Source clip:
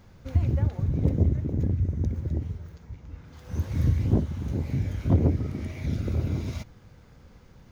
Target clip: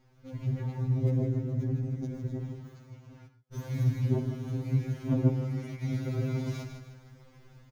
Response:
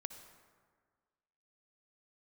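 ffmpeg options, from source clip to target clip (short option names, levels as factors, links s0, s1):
-filter_complex "[0:a]dynaudnorm=f=330:g=3:m=2.51,aecho=1:1:155|310|465|620|775:0.398|0.159|0.0637|0.0255|0.0102,asettb=1/sr,asplit=3[s0][s1][s2];[s0]atrim=end=3.274[s3];[s1]atrim=start=3.27:end=5.82,asetpts=PTS-STARTPTS,afade=t=in:d=0.004:c=qsin,afade=t=out:st=2.546:d=0.004:c=qsin,agate=range=0.0126:threshold=0.0562:ratio=16:detection=peak[s4];[s2]atrim=start=5.816[s5];[s3][s4]acrossfade=d=0.004:c1=hsin:c2=qsin[s6];[s6][s5]acrossfade=d=0.004:c1=qsin:c2=hsin[s7];[1:a]atrim=start_sample=2205,atrim=end_sample=6174[s8];[s7][s8]afir=irnorm=-1:irlink=0,afftfilt=real='re*2.45*eq(mod(b,6),0)':imag='im*2.45*eq(mod(b,6),0)':win_size=2048:overlap=0.75,volume=0.596"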